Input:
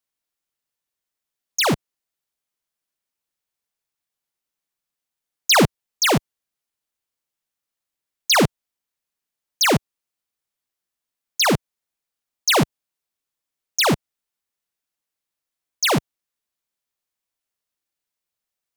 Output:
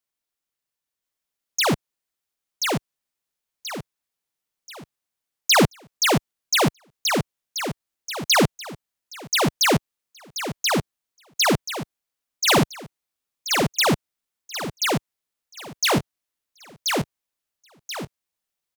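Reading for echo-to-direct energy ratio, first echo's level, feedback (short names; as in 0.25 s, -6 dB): -2.5 dB, -3.0 dB, 36%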